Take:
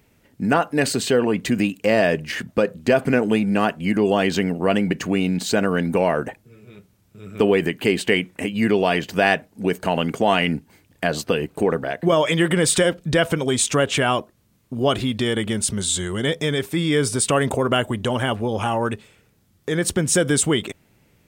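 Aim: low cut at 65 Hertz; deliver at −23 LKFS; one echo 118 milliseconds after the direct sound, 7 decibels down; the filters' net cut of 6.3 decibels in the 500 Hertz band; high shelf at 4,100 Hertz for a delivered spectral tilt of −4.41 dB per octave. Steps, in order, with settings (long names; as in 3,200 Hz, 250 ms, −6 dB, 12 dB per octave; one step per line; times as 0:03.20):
high-pass filter 65 Hz
parametric band 500 Hz −8 dB
high-shelf EQ 4,100 Hz −4.5 dB
single-tap delay 118 ms −7 dB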